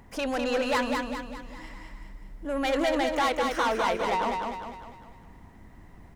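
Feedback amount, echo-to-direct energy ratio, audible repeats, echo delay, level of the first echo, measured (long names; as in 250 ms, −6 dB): 47%, −3.0 dB, 5, 201 ms, −4.0 dB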